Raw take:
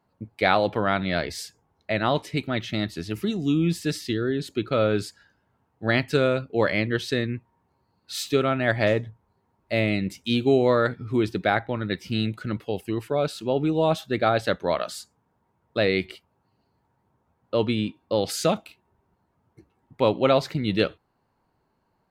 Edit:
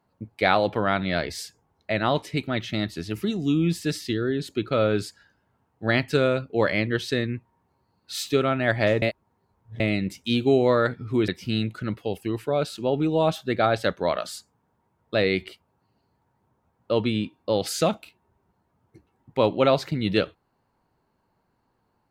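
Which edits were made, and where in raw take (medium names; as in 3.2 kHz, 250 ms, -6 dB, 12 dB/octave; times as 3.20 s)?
9.02–9.80 s: reverse
11.28–11.91 s: delete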